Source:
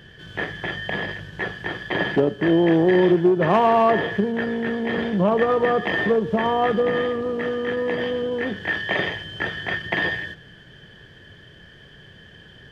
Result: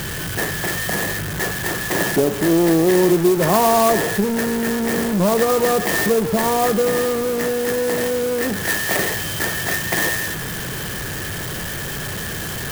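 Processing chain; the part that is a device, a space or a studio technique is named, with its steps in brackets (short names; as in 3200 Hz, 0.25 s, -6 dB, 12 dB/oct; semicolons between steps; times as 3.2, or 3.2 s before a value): early CD player with a faulty converter (zero-crossing step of -21.5 dBFS; clock jitter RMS 0.066 ms)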